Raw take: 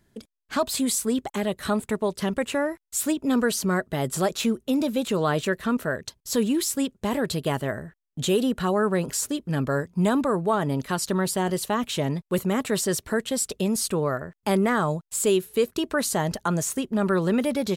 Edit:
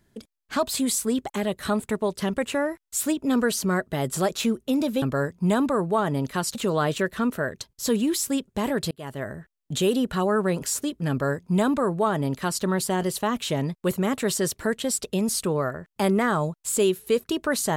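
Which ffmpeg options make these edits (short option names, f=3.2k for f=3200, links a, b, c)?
-filter_complex "[0:a]asplit=4[a][b][c][d];[a]atrim=end=5.022[e];[b]atrim=start=9.568:end=11.102[f];[c]atrim=start=5.018:end=7.38,asetpts=PTS-STARTPTS,afade=t=out:st=2.358:d=0.004:c=hsin[g];[d]atrim=start=7.38,asetpts=PTS-STARTPTS,afade=t=in:d=0.47[h];[e][f]acrossfade=d=0.004:c1=hsin:c2=hsin[i];[g][h]concat=n=2:v=0:a=1[j];[i][j]acrossfade=d=0.004:c1=hsin:c2=hsin"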